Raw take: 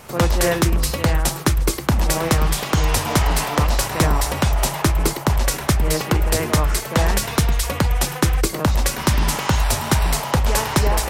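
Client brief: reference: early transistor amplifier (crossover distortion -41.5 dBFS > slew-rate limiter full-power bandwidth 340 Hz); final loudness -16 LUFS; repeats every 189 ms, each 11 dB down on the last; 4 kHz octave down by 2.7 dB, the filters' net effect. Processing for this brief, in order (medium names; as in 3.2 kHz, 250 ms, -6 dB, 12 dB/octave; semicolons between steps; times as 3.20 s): peaking EQ 4 kHz -3.5 dB; feedback delay 189 ms, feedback 28%, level -11 dB; crossover distortion -41.5 dBFS; slew-rate limiter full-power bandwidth 340 Hz; trim +4.5 dB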